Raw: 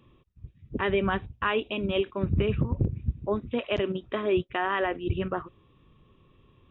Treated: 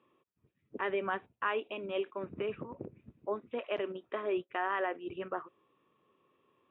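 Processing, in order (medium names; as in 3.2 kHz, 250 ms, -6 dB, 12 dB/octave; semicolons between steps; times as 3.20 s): band-pass 400–2200 Hz; trim -4.5 dB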